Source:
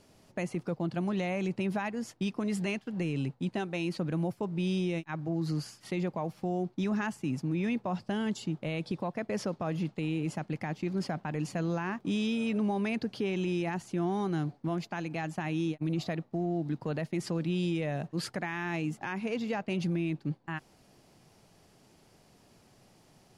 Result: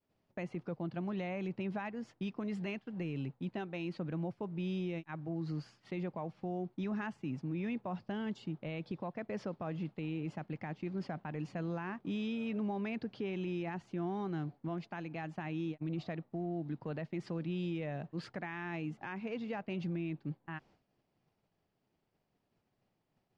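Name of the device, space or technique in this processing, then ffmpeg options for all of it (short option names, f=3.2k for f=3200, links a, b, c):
hearing-loss simulation: -af "lowpass=3.4k,agate=range=-33dB:threshold=-52dB:ratio=3:detection=peak,volume=-6.5dB"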